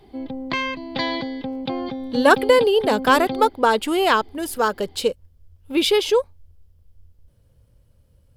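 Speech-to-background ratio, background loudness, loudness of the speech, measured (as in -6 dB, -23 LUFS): 9.0 dB, -28.0 LUFS, -19.0 LUFS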